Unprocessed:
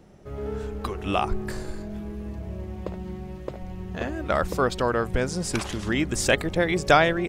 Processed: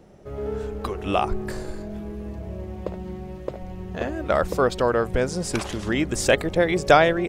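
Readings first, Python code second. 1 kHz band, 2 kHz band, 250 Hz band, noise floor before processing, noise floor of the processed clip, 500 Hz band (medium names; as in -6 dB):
+2.0 dB, +0.5 dB, +1.5 dB, -39 dBFS, -38 dBFS, +4.0 dB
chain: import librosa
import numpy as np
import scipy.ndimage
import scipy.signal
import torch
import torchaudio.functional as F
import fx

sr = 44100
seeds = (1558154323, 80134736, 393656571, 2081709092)

y = fx.peak_eq(x, sr, hz=530.0, db=4.5, octaves=1.2)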